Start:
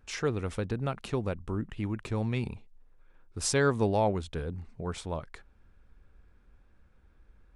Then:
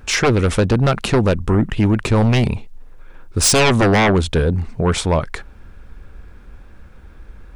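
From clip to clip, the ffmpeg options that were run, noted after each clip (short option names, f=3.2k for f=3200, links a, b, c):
-af "aeval=exprs='0.188*sin(PI/2*3.55*val(0)/0.188)':c=same,volume=5dB"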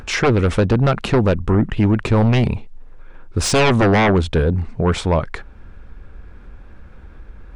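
-af "aemphasis=mode=reproduction:type=50kf,acompressor=mode=upward:threshold=-33dB:ratio=2.5"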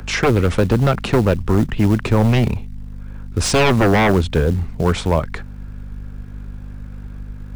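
-filter_complex "[0:a]aeval=exprs='val(0)+0.0282*(sin(2*PI*50*n/s)+sin(2*PI*2*50*n/s)/2+sin(2*PI*3*50*n/s)/3+sin(2*PI*4*50*n/s)/4+sin(2*PI*5*50*n/s)/5)':c=same,acrossover=split=120|490|1500[a][b][c][d];[b]acrusher=bits=5:mode=log:mix=0:aa=0.000001[e];[a][e][c][d]amix=inputs=4:normalize=0"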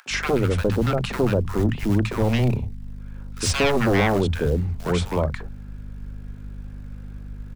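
-filter_complex "[0:a]acrossover=split=160|990[a][b][c];[b]adelay=60[d];[a]adelay=100[e];[e][d][c]amix=inputs=3:normalize=0,volume=-4dB"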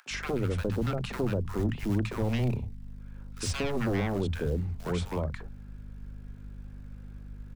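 -filter_complex "[0:a]acrossover=split=370[a][b];[b]acompressor=threshold=-25dB:ratio=6[c];[a][c]amix=inputs=2:normalize=0,volume=-7.5dB"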